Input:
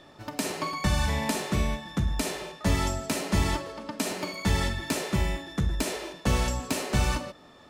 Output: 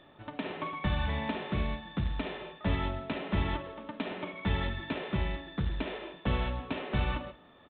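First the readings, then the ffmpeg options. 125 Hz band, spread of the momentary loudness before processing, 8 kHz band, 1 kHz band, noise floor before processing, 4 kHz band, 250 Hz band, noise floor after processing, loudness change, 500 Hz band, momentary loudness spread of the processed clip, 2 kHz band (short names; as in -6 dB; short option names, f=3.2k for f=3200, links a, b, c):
-5.0 dB, 6 LU, under -40 dB, -5.0 dB, -53 dBFS, -7.5 dB, -5.0 dB, -57 dBFS, -5.5 dB, -5.0 dB, 7 LU, -5.0 dB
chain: -af "aresample=8000,acrusher=bits=5:mode=log:mix=0:aa=0.000001,aresample=44100,aecho=1:1:176:0.0794,volume=-5dB"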